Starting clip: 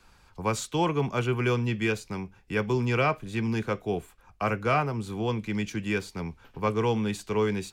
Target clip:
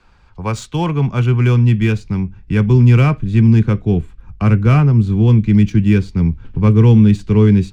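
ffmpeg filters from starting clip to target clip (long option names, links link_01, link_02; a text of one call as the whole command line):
ffmpeg -i in.wav -af "asubboost=boost=10.5:cutoff=210,adynamicsmooth=sensitivity=7:basefreq=4600,volume=5.5dB" out.wav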